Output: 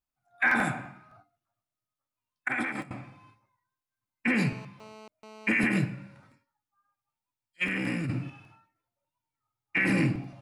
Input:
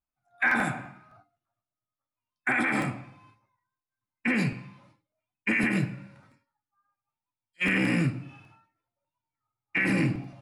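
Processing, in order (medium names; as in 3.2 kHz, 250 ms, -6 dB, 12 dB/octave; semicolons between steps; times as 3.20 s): 2.48–2.91 s: gate -24 dBFS, range -20 dB; 4.37–5.51 s: mobile phone buzz -48 dBFS; 7.64–8.30 s: compressor with a negative ratio -30 dBFS, ratio -1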